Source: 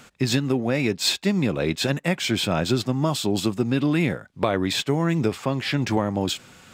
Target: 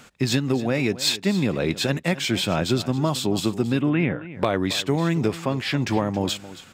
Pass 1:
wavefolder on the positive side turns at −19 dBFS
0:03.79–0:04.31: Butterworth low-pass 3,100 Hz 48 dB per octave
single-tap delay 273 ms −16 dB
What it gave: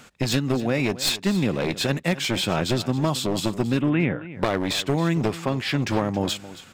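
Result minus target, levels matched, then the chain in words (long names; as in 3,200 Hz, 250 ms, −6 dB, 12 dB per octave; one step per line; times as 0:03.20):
wavefolder on the positive side: distortion +24 dB
wavefolder on the positive side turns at −12.5 dBFS
0:03.79–0:04.31: Butterworth low-pass 3,100 Hz 48 dB per octave
single-tap delay 273 ms −16 dB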